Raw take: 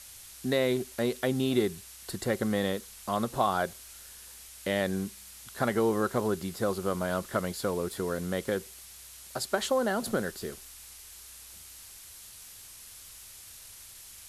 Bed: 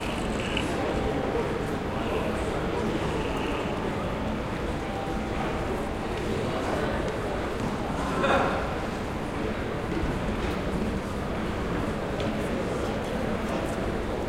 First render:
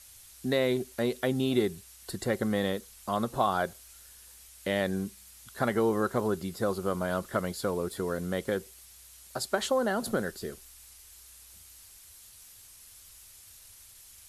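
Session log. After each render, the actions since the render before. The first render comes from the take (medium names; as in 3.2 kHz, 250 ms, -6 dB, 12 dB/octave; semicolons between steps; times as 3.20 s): noise reduction 6 dB, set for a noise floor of -49 dBFS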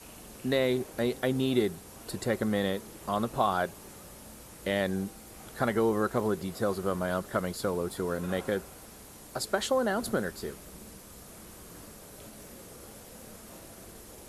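add bed -21 dB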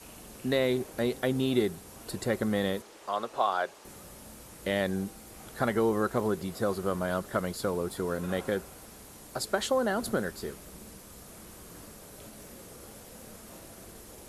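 2.82–3.85 s: three-band isolator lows -20 dB, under 360 Hz, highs -13 dB, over 7.5 kHz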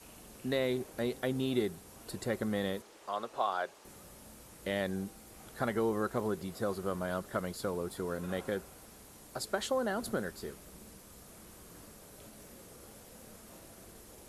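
trim -5 dB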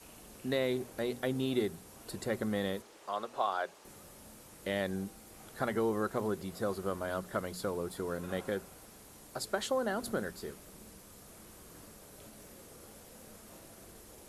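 hum notches 60/120/180/240 Hz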